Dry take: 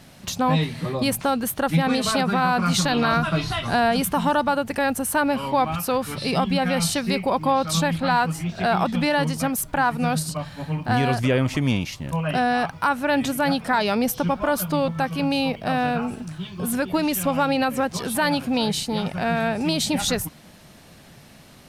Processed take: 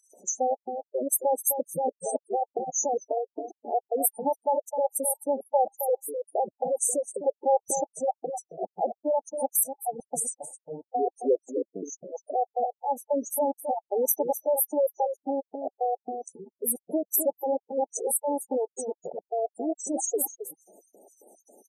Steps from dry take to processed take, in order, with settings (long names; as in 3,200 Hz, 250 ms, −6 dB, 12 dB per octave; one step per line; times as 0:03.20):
high-shelf EQ 2,800 Hz +10.5 dB
slap from a distant wall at 44 metres, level −8 dB
auto-filter high-pass square 3.7 Hz 420–4,000 Hz
0:04.89–0:07.28: parametric band 4,100 Hz −13.5 dB 0.88 octaves
bit-depth reduction 10 bits, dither none
gate on every frequency bin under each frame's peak −10 dB strong
linear-phase brick-wall band-stop 890–5,900 Hz
level −5 dB